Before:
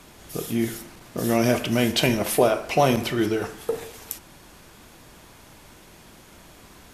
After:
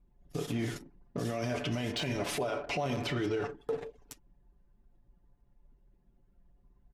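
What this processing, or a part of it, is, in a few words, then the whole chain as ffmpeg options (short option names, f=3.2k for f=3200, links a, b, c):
podcast mastering chain: -af "anlmdn=3.98,highpass=f=100:p=1,lowpass=6.3k,lowshelf=f=70:g=11.5,aecho=1:1:7:0.62,deesser=0.55,acompressor=threshold=-29dB:ratio=2,alimiter=limit=-23dB:level=0:latency=1:release=16,volume=-1dB" -ar 48000 -c:a libmp3lame -b:a 112k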